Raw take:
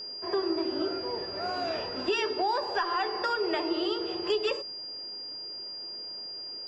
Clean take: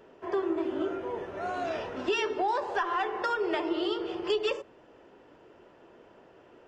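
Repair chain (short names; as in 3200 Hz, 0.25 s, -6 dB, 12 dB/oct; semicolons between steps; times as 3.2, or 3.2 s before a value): notch 4800 Hz, Q 30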